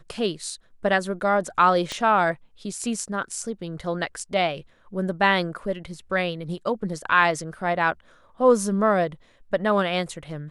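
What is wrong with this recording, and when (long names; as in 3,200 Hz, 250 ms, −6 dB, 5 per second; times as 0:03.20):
0:01.92: click −16 dBFS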